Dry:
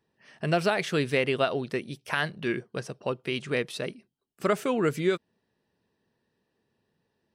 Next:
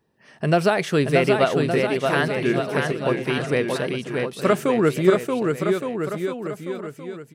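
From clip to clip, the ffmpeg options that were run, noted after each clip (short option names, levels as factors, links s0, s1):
-filter_complex "[0:a]equalizer=f=3400:w=0.54:g=-5,asplit=2[s0][s1];[s1]aecho=0:1:630|1166|1621|2008|2336:0.631|0.398|0.251|0.158|0.1[s2];[s0][s2]amix=inputs=2:normalize=0,volume=2.24"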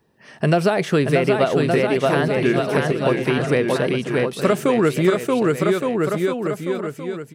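-filter_complex "[0:a]acrossover=split=850|2400[s0][s1][s2];[s0]acompressor=threshold=0.0891:ratio=4[s3];[s1]acompressor=threshold=0.0224:ratio=4[s4];[s2]acompressor=threshold=0.0112:ratio=4[s5];[s3][s4][s5]amix=inputs=3:normalize=0,volume=2"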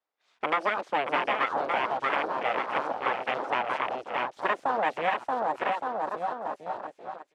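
-af "aeval=exprs='abs(val(0))':c=same,afwtdn=0.0501,highpass=530,lowpass=6200,volume=0.794"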